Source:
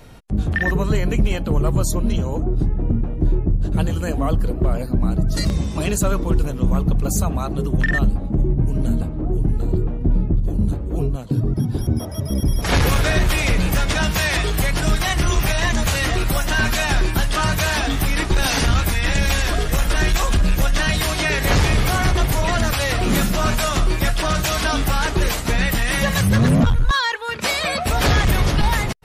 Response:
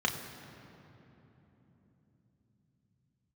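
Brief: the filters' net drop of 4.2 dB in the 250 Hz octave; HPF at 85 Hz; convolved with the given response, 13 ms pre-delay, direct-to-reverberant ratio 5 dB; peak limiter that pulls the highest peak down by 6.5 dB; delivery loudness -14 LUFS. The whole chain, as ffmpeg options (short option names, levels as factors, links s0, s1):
-filter_complex "[0:a]highpass=85,equalizer=f=250:t=o:g=-6,alimiter=limit=0.237:level=0:latency=1,asplit=2[s0][s1];[1:a]atrim=start_sample=2205,adelay=13[s2];[s1][s2]afir=irnorm=-1:irlink=0,volume=0.2[s3];[s0][s3]amix=inputs=2:normalize=0,volume=2.51"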